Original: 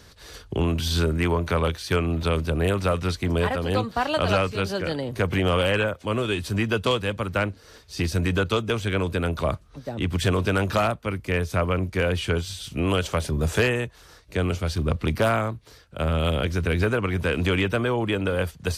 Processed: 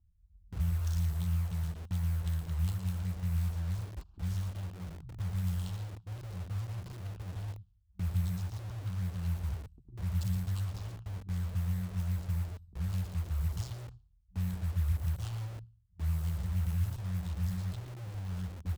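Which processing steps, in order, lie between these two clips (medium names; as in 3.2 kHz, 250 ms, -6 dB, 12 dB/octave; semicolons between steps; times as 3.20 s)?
local Wiener filter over 41 samples; FFT band-reject 190–6200 Hz; sample-rate reducer 12 kHz, jitter 0%; on a send: delay 116 ms -9.5 dB; on the sum: gate -38 dBFS, range -14 dB; static phaser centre 530 Hz, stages 6; level-controlled noise filter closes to 790 Hz, open at -28.5 dBFS; feedback delay 71 ms, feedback 53%, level -23 dB; in parallel at -5 dB: integer overflow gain 43.5 dB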